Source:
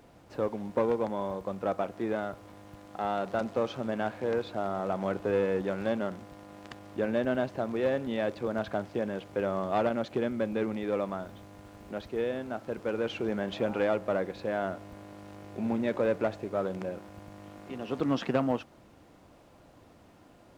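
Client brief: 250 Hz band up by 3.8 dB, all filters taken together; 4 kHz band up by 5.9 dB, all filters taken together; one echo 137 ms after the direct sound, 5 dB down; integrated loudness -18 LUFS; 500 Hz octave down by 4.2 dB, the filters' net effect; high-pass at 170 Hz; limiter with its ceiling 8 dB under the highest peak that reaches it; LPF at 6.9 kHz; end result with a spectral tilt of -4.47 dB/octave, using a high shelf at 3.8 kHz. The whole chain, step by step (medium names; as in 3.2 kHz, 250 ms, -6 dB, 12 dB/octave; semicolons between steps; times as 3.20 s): high-pass 170 Hz; low-pass 6.9 kHz; peaking EQ 250 Hz +7.5 dB; peaking EQ 500 Hz -7 dB; treble shelf 3.8 kHz +3.5 dB; peaking EQ 4 kHz +6 dB; peak limiter -22 dBFS; delay 137 ms -5 dB; trim +14.5 dB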